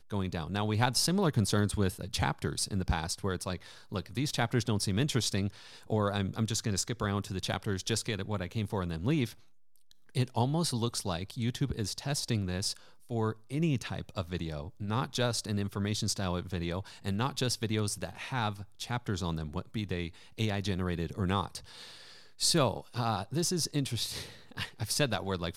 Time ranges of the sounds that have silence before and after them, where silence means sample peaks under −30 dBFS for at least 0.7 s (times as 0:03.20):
0:10.17–0:21.56